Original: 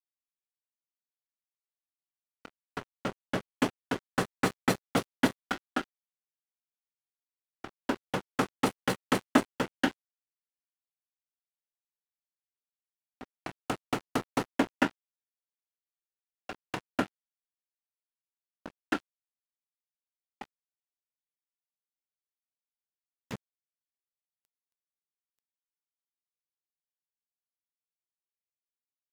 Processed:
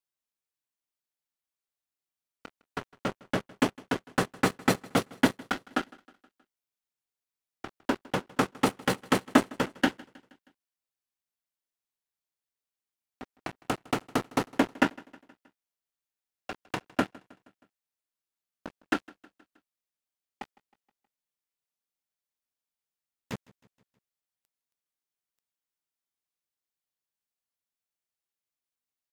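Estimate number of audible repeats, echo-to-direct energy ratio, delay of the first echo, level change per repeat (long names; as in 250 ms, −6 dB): 3, −22.0 dB, 158 ms, −5.0 dB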